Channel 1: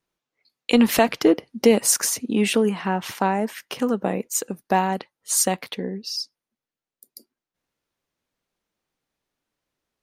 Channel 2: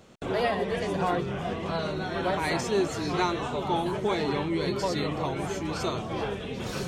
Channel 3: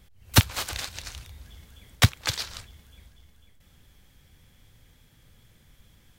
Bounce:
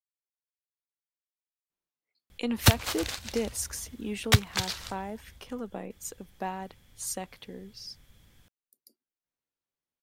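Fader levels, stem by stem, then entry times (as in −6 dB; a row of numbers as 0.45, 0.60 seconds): −14.5 dB, muted, −2.0 dB; 1.70 s, muted, 2.30 s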